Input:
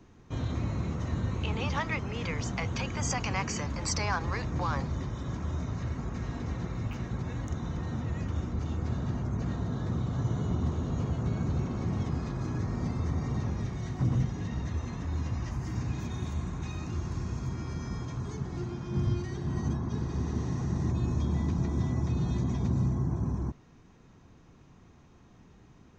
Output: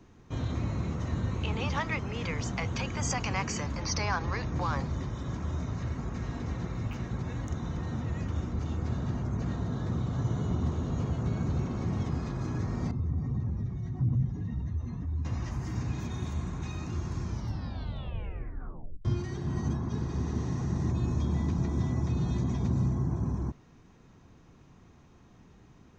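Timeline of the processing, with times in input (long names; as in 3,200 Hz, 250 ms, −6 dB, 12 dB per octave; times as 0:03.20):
0:03.80–0:04.55: linear-phase brick-wall low-pass 6,800 Hz
0:12.91–0:15.25: expanding power law on the bin magnitudes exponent 1.5
0:17.22: tape stop 1.83 s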